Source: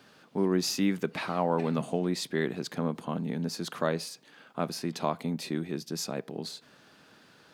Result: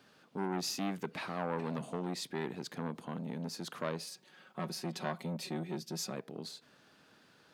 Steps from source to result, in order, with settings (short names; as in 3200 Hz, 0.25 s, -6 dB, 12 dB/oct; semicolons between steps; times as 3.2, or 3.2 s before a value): 4.07–6.15 comb 5.4 ms, depth 74%; core saturation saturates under 910 Hz; gain -6 dB